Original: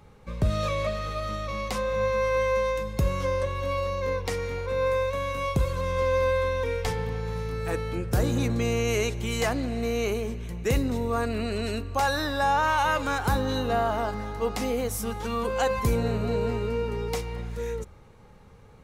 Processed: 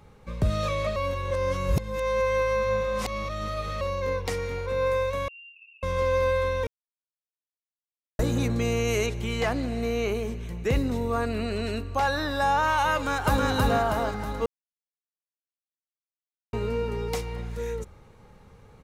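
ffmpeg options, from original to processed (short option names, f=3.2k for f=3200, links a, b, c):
-filter_complex "[0:a]asettb=1/sr,asplit=3[a][b][c];[a]atrim=end=5.284[d];[b]atrim=start=5.28:end=5.83,asetpts=PTS-STARTPTS,afade=t=in:d=0.004:c=qsin,afade=t=out:st=0.546:d=0.004:c=qsin,asuperpass=centerf=2700:order=20:qfactor=6.7[e];[c]atrim=start=5.826[f];[d][e]acrossfade=d=0.004:c1=hsin:c2=qsin[g];[g][f]acrossfade=d=0.004:c1=qsin:c2=hsin,asettb=1/sr,asplit=3[h][i][j];[h]atrim=end=9.064[k];[i]atrim=start=9.06:end=12.31,asetpts=PTS-STARTPTS,afade=t=in:d=0.004:c=qsin,afade=t=out:st=3.246:d=0.004:c=qsin,acrossover=split=4500[l][m];[m]acompressor=threshold=-47dB:ratio=4:attack=1:release=60[n];[l][n]amix=inputs=2:normalize=0[o];[j]atrim=start=12.306[p];[k][o]acrossfade=d=0.004:c1=hsin:c2=qsin[q];[q][p]acrossfade=d=0.004:c1=qsin:c2=hsin,asplit=2[r][s];[s]afade=t=in:st=12.94:d=0.01,afade=t=out:st=13.45:d=0.01,aecho=0:1:320|640|960|1280|1600|1920|2240:0.891251|0.445625|0.222813|0.111406|0.0557032|0.0278516|0.0139258[t];[r][t]amix=inputs=2:normalize=0,asplit=7[u][v][w][x][y][z][aa];[u]atrim=end=0.962[ab];[v]atrim=start=0.958:end=3.812,asetpts=PTS-STARTPTS,areverse[ac];[w]atrim=start=3.808:end=6.67,asetpts=PTS-STARTPTS,afade=t=out:st=2.858:d=0.004:c=hsin[ad];[x]atrim=start=6.67:end=8.19,asetpts=PTS-STARTPTS,volume=0[ae];[y]atrim=start=8.19:end=14.46,asetpts=PTS-STARTPTS,afade=t=in:d=0.004:c=hsin,afade=t=out:st=6.266:d=0.004:c=hsin[af];[z]atrim=start=14.46:end=16.53,asetpts=PTS-STARTPTS,volume=0[ag];[aa]atrim=start=16.53,asetpts=PTS-STARTPTS,afade=t=in:d=0.004:c=hsin[ah];[ab][ac]acrossfade=d=0.004:c1=hsin:c2=hsin[ai];[ad][ae][af][ag][ah]concat=n=5:v=0:a=1[aj];[ai][aj]acrossfade=d=0.004:c1=hsin:c2=hsin"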